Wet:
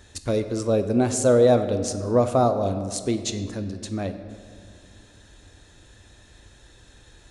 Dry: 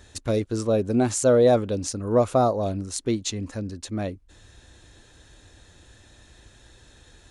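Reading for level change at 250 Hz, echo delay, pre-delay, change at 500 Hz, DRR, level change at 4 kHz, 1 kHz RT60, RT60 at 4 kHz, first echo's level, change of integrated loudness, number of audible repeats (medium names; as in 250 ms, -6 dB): +1.0 dB, no echo, 21 ms, +1.0 dB, 8.5 dB, +0.5 dB, 1.9 s, 1.2 s, no echo, +1.0 dB, no echo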